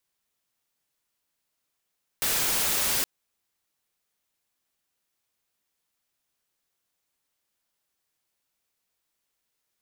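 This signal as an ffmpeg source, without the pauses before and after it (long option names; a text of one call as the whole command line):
ffmpeg -f lavfi -i "anoisesrc=color=white:amplitude=0.0919:duration=0.82:sample_rate=44100:seed=1" out.wav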